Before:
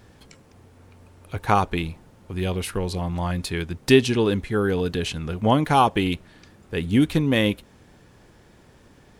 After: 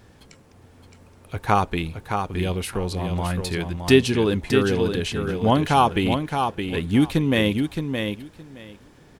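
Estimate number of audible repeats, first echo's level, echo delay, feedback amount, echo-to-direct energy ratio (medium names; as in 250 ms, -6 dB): 2, -6.0 dB, 618 ms, 16%, -6.0 dB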